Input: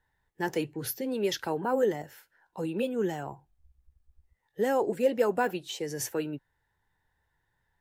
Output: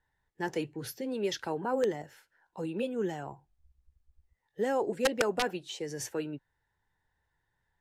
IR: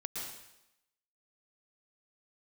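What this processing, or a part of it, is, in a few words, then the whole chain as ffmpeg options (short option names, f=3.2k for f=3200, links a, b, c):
overflowing digital effects unit: -af "aeval=exprs='(mod(5.96*val(0)+1,2)-1)/5.96':c=same,lowpass=9.4k,volume=-3dB"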